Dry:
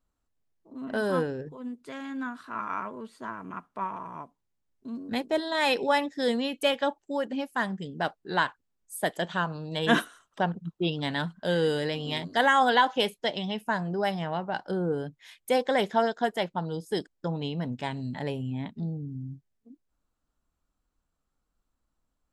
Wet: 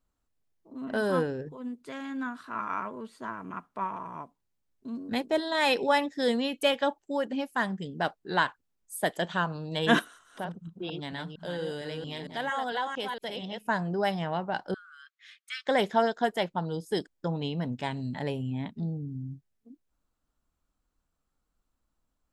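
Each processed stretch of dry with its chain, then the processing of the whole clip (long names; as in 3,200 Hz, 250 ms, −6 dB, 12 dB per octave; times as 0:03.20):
0:09.99–0:13.67: delay that plays each chunk backwards 228 ms, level −5.5 dB + downward compressor 1.5 to 1, threshold −47 dBFS
0:14.74–0:15.67: linear-phase brick-wall high-pass 1,100 Hz + high-frequency loss of the air 95 metres
whole clip: no processing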